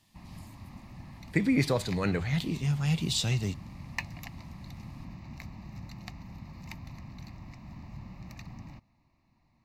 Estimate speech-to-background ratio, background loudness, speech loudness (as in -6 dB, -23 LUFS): 16.0 dB, -45.0 LUFS, -29.0 LUFS